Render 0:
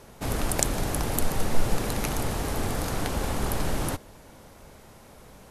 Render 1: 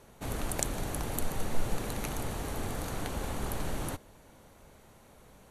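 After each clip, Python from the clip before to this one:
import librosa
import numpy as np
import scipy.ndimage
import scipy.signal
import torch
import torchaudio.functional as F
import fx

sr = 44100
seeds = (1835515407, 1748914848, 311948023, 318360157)

y = fx.notch(x, sr, hz=5100.0, q=8.6)
y = F.gain(torch.from_numpy(y), -7.0).numpy()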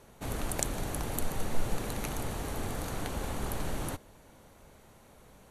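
y = x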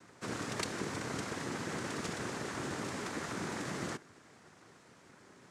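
y = fx.noise_vocoder(x, sr, seeds[0], bands=3)
y = F.gain(torch.from_numpy(y), -1.0).numpy()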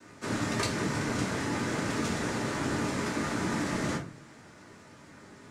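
y = fx.room_shoebox(x, sr, seeds[1], volume_m3=200.0, walls='furnished', distance_m=2.6)
y = F.gain(torch.from_numpy(y), 1.5).numpy()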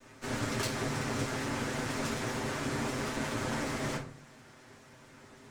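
y = fx.lower_of_two(x, sr, delay_ms=7.8)
y = F.gain(torch.from_numpy(y), -1.5).numpy()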